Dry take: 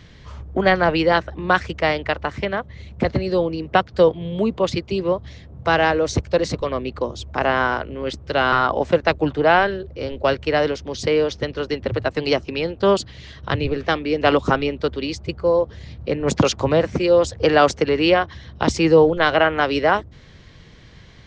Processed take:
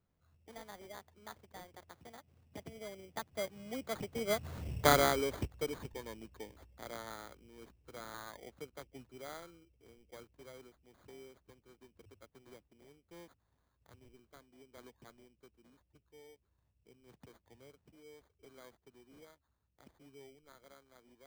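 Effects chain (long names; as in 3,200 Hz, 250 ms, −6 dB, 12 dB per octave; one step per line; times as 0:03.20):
source passing by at 0:04.66, 53 m/s, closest 4.8 metres
sample-rate reduction 2,700 Hz, jitter 0%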